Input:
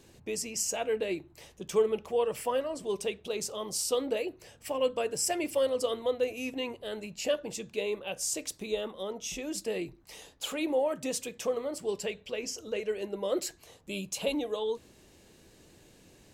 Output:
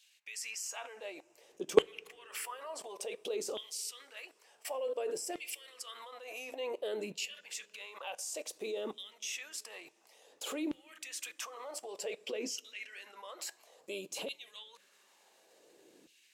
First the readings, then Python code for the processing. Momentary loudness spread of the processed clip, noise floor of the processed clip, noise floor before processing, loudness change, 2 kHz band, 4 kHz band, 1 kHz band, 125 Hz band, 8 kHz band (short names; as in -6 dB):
11 LU, -68 dBFS, -59 dBFS, -7.0 dB, -4.0 dB, -4.5 dB, -7.5 dB, under -10 dB, -6.5 dB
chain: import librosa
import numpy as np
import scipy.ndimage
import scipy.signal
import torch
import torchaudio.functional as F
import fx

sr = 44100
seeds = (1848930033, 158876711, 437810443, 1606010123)

y = fx.level_steps(x, sr, step_db=23)
y = fx.filter_lfo_highpass(y, sr, shape='saw_down', hz=0.56, low_hz=280.0, high_hz=3100.0, q=2.3)
y = fx.rev_double_slope(y, sr, seeds[0], early_s=0.21, late_s=4.2, knee_db=-22, drr_db=17.0)
y = y * 10.0 ** (5.0 / 20.0)